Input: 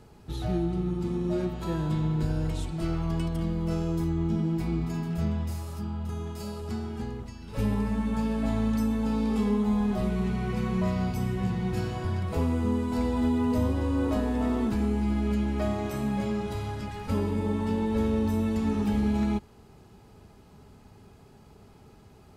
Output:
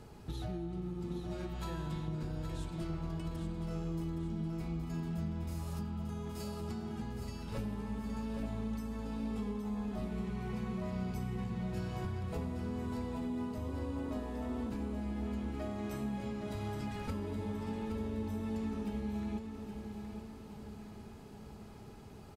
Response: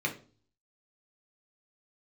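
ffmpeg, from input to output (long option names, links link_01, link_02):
-filter_complex "[0:a]asettb=1/sr,asplit=3[link_01][link_02][link_03];[link_01]atrim=end=1.204[link_04];[link_02]atrim=start=1.2:end=2.08,asetpts=PTS-STARTPTS,afade=type=in:duration=0.004:curve=qsin,afade=type=out:start_time=0.876:duration=0.004:curve=qsin,equalizer=frequency=260:width=0.52:gain=-9.5[link_05];[link_03]atrim=start=2.076[link_06];[link_04][link_05]acrossfade=duration=0.004:curve1=hsin:curve2=qsin[link_07];[link_07][link_06]acrossfade=duration=0.004:curve1=qsin:curve2=hsin,acompressor=threshold=-37dB:ratio=6,aecho=1:1:819|1638|2457|3276|4095|4914:0.422|0.211|0.105|0.0527|0.0264|0.0132"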